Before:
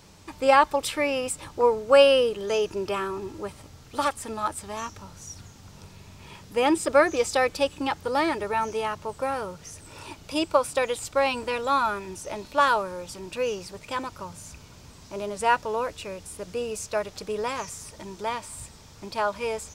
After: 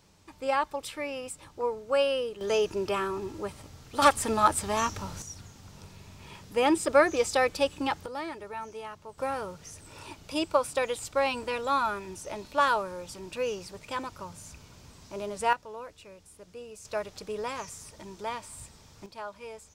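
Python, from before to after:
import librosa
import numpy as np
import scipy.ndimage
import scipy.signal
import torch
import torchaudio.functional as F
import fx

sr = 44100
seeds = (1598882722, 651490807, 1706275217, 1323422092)

y = fx.gain(x, sr, db=fx.steps((0.0, -9.5), (2.41, -1.0), (4.02, 6.0), (5.22, -2.0), (8.06, -12.0), (9.18, -3.5), (15.53, -13.5), (16.85, -5.0), (19.06, -13.5)))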